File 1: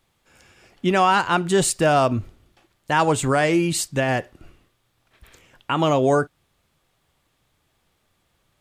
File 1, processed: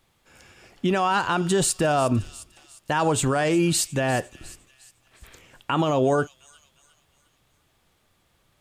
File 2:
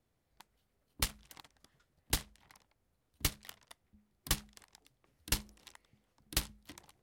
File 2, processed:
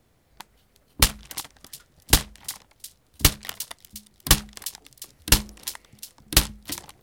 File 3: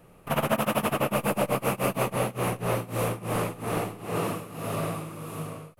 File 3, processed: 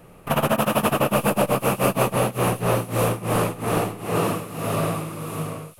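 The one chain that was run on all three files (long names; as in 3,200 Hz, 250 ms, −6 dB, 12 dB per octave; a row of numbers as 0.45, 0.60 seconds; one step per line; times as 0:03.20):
dynamic equaliser 2,100 Hz, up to −7 dB, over −49 dBFS, Q 7.1
delay with a high-pass on its return 355 ms, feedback 42%, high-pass 4,200 Hz, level −13 dB
brickwall limiter −14.5 dBFS
loudness normalisation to −23 LKFS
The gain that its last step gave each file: +2.0, +15.5, +6.5 decibels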